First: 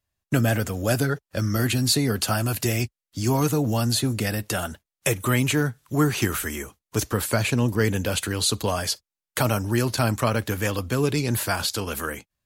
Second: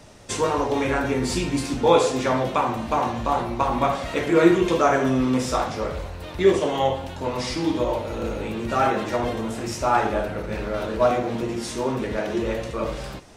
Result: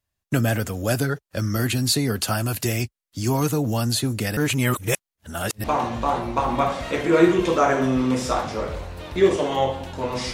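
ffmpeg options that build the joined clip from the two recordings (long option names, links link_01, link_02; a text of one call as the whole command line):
ffmpeg -i cue0.wav -i cue1.wav -filter_complex "[0:a]apad=whole_dur=10.33,atrim=end=10.33,asplit=2[link_01][link_02];[link_01]atrim=end=4.372[link_03];[link_02]atrim=start=4.368:end=5.642,asetpts=PTS-STARTPTS,areverse[link_04];[1:a]atrim=start=2.868:end=7.56[link_05];[link_03][link_04]acrossfade=duration=0.004:curve1=hsin:curve2=hsin[link_06];[link_06][link_05]acrossfade=duration=0.004:curve1=hsin:curve2=hsin" out.wav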